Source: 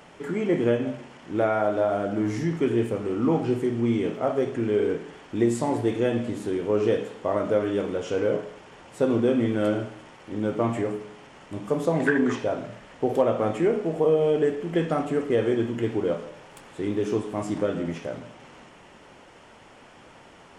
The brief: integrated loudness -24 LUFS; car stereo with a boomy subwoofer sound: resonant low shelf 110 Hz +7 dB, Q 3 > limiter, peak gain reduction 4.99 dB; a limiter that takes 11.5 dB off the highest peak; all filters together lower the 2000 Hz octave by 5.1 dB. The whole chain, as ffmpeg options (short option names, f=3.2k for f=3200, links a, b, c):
-af "equalizer=f=2k:t=o:g=-7,alimiter=limit=-21dB:level=0:latency=1,lowshelf=f=110:t=q:w=3:g=7,volume=9dB,alimiter=limit=-15dB:level=0:latency=1"